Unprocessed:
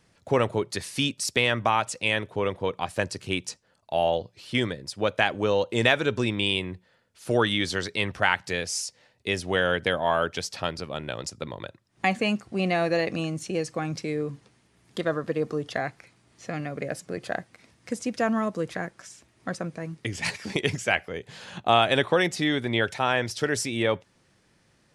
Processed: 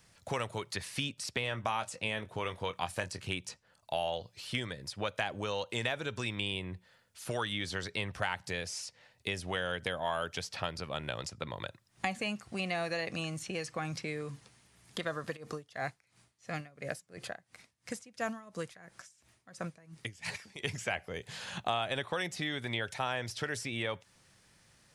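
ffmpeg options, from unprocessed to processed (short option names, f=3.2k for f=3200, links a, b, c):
-filter_complex "[0:a]asettb=1/sr,asplit=3[a][b][c];[a]atrim=end=1.414[d];[b]atrim=start=1.41:end=3.21,asetpts=PTS-STARTPTS,afade=t=in:d=0.004:c=qsin,afade=t=out:st=1.796:d=0.004:c=qsin,asplit=2[e][f];[f]adelay=23,volume=-10dB[g];[e][g]amix=inputs=2:normalize=0,atrim=end_sample=79380[h];[c]atrim=start=3.206[i];[d][h]acrossfade=d=0.004:c1=hsin:c2=qsin[j];[j][i]acrossfade=d=0.004:c1=qsin:c2=hsin,asplit=3[k][l][m];[k]afade=t=out:st=15.35:d=0.02[n];[l]aeval=exprs='val(0)*pow(10,-23*(0.5-0.5*cos(2*PI*2.9*n/s))/20)':c=same,afade=t=in:st=15.35:d=0.02,afade=t=out:st=20.74:d=0.02[o];[m]afade=t=in:st=20.74:d=0.02[p];[n][o][p]amix=inputs=3:normalize=0,highshelf=f=6.1k:g=7.5,acrossover=split=900|3500[q][r][s];[q]acompressor=threshold=-32dB:ratio=4[t];[r]acompressor=threshold=-37dB:ratio=4[u];[s]acompressor=threshold=-47dB:ratio=4[v];[t][u][v]amix=inputs=3:normalize=0,equalizer=f=320:t=o:w=1.6:g=-7"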